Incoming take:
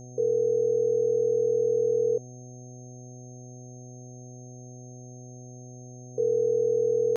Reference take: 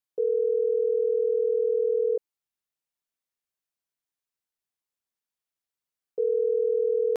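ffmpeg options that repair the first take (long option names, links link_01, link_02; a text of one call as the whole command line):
ffmpeg -i in.wav -af "bandreject=frequency=124.4:width_type=h:width=4,bandreject=frequency=248.8:width_type=h:width=4,bandreject=frequency=373.2:width_type=h:width=4,bandreject=frequency=497.6:width_type=h:width=4,bandreject=frequency=622:width_type=h:width=4,bandreject=frequency=746.4:width_type=h:width=4,bandreject=frequency=6400:width=30" out.wav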